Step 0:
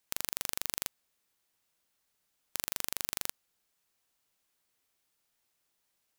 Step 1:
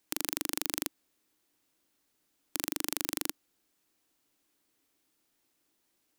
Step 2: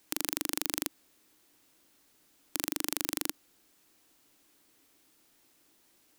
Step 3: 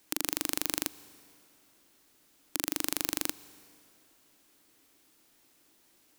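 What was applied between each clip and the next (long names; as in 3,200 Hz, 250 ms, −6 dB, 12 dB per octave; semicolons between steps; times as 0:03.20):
parametric band 300 Hz +14 dB 0.69 octaves; level +2 dB
boost into a limiter +10.5 dB; level −1 dB
dense smooth reverb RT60 2.7 s, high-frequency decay 0.8×, pre-delay 105 ms, DRR 19.5 dB; level +1 dB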